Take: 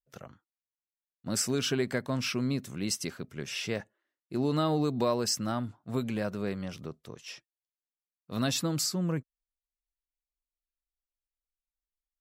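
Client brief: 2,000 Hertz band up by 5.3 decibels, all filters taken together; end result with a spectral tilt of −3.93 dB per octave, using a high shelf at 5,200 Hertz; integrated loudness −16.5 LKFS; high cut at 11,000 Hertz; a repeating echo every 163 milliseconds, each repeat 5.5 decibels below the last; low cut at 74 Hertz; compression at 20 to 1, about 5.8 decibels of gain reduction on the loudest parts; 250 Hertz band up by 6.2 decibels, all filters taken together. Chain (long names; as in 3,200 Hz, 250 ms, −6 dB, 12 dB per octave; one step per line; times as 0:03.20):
high-pass filter 74 Hz
low-pass filter 11,000 Hz
parametric band 250 Hz +7.5 dB
parametric band 2,000 Hz +5.5 dB
high-shelf EQ 5,200 Hz +8.5 dB
downward compressor 20 to 1, threshold −25 dBFS
repeating echo 163 ms, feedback 53%, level −5.5 dB
level +13.5 dB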